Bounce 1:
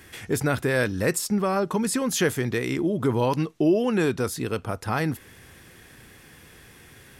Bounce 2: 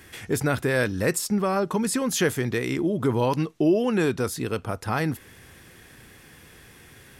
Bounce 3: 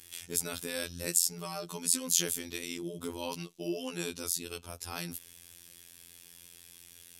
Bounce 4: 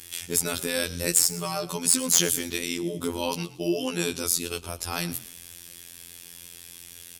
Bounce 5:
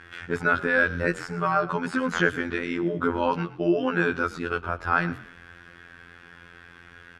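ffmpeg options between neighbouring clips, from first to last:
-af anull
-af "aexciter=amount=6:drive=3.7:freq=2.6k,afftfilt=real='hypot(re,im)*cos(PI*b)':imag='0':win_size=2048:overlap=0.75,volume=-12dB"
-filter_complex "[0:a]aeval=exprs='0.891*sin(PI/2*1.78*val(0)/0.891)':c=same,asplit=4[a][b][c][d];[b]adelay=114,afreqshift=-42,volume=-17.5dB[e];[c]adelay=228,afreqshift=-84,volume=-27.4dB[f];[d]adelay=342,afreqshift=-126,volume=-37.3dB[g];[a][e][f][g]amix=inputs=4:normalize=0"
-filter_complex "[0:a]asplit=2[a][b];[b]asoftclip=type=hard:threshold=-13dB,volume=-6.5dB[c];[a][c]amix=inputs=2:normalize=0,lowpass=f=1.5k:t=q:w=5.1"

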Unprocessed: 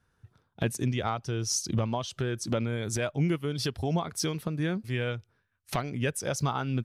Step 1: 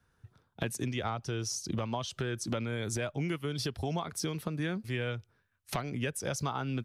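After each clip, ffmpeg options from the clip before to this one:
-filter_complex "[0:a]acrossover=split=250|880[a][b][c];[a]acompressor=threshold=-36dB:ratio=4[d];[b]acompressor=threshold=-36dB:ratio=4[e];[c]acompressor=threshold=-35dB:ratio=4[f];[d][e][f]amix=inputs=3:normalize=0"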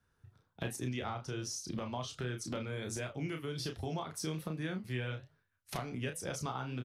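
-filter_complex "[0:a]flanger=delay=8.7:depth=7.1:regen=-78:speed=1.3:shape=triangular,asplit=2[a][b];[b]adelay=32,volume=-6dB[c];[a][c]amix=inputs=2:normalize=0,volume=-1dB"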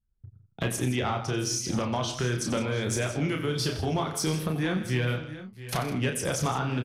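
-af "aeval=exprs='0.0794*sin(PI/2*1.58*val(0)/0.0794)':c=same,anlmdn=0.00398,aecho=1:1:91|161|680|706:0.237|0.211|0.158|0.126,volume=3dB"

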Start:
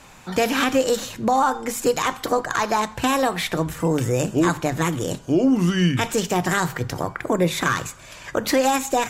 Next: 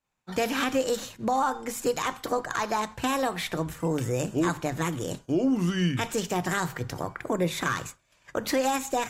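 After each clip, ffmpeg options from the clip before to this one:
-af "agate=range=-33dB:threshold=-29dB:ratio=3:detection=peak,volume=-6.5dB"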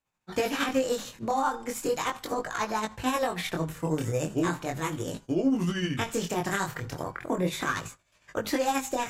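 -af "tremolo=f=13:d=0.55,flanger=delay=18:depth=7.9:speed=0.37,volume=4dB"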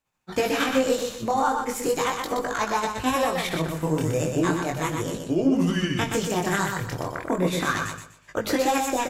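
-af "aecho=1:1:123|246|369|492:0.562|0.152|0.041|0.0111,volume=3.5dB"

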